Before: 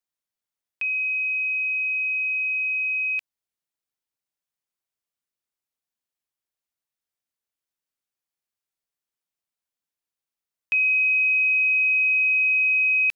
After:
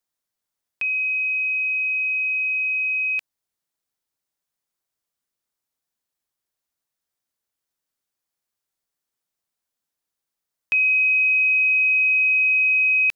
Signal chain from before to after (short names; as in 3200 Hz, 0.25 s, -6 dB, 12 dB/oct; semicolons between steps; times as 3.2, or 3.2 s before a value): bell 2600 Hz -3.5 dB; gain +5.5 dB